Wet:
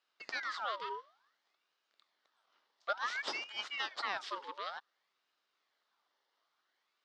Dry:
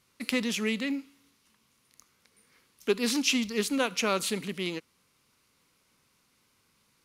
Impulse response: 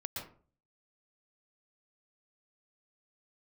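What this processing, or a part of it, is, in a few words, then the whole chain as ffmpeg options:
voice changer toy: -af "aeval=exprs='val(0)*sin(2*PI*1700*n/s+1700*0.6/0.56*sin(2*PI*0.56*n/s))':c=same,highpass=440,equalizer=f=500:t=q:w=4:g=-3,equalizer=f=1200:t=q:w=4:g=4,equalizer=f=2500:t=q:w=4:g=-7,lowpass=f=4800:w=0.5412,lowpass=f=4800:w=1.3066,volume=0.473"

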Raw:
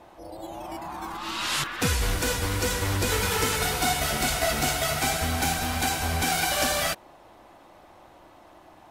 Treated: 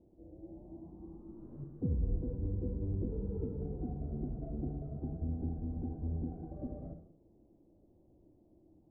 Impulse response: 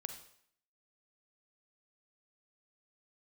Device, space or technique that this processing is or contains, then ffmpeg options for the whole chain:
next room: -filter_complex "[0:a]lowpass=f=380:w=0.5412,lowpass=f=380:w=1.3066[s0];[1:a]atrim=start_sample=2205[s1];[s0][s1]afir=irnorm=-1:irlink=0,volume=0.668"

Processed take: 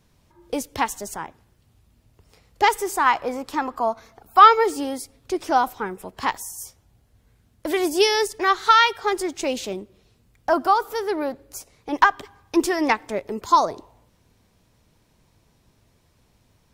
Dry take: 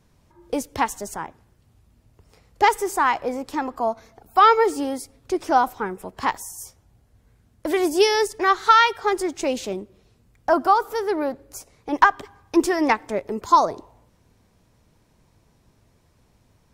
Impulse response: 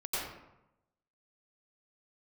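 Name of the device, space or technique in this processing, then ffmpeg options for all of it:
presence and air boost: -filter_complex "[0:a]asettb=1/sr,asplit=3[s0][s1][s2];[s0]atrim=end=3.064[s3];[s1]atrim=start=3.06:end=4.48,asetpts=PTS-STARTPTS,afade=t=in:d=0.004:c=qsin,afade=t=out:st=1.416:d=0.004:c=qsin,equalizer=f=1200:t=o:w=0.91:g=5.5[s4];[s2]atrim=start=4.476[s5];[s3][s4]acrossfade=d=0.004:c1=hsin:c2=qsin[s6];[s6][s5]acrossfade=d=0.004:c1=qsin:c2=hsin,equalizer=f=3400:t=o:w=1.4:g=4,highshelf=f=11000:g=6,volume=0.841"

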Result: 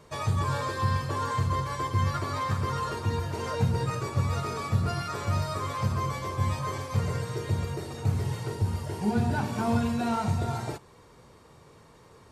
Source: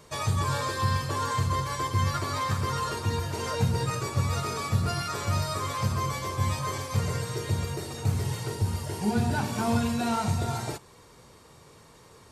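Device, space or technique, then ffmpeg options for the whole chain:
behind a face mask: -af "highshelf=f=3100:g=-8"

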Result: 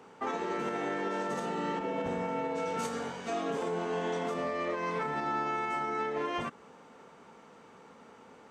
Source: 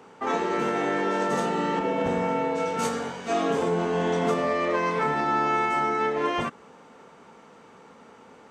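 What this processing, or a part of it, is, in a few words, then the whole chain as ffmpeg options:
stacked limiters: -filter_complex "[0:a]asettb=1/sr,asplit=3[s0][s1][s2];[s0]atrim=end=3.574[s3];[s1]atrim=start=3.57:end=4.35,asetpts=PTS-STARTPTS,afade=t=in:d=0.004:c=qsin,afade=t=out:st=0.776:d=0.004:c=qsin,highpass=f=260:p=1[s4];[s2]atrim=start=4.346[s5];[s3][s4]acrossfade=d=0.004:c1=hsin:c2=qsin[s6];[s6][s5]acrossfade=d=0.004:c1=qsin:c2=hsin,alimiter=limit=0.15:level=0:latency=1:release=396,alimiter=limit=0.0944:level=0:latency=1:release=97,volume=0.631"

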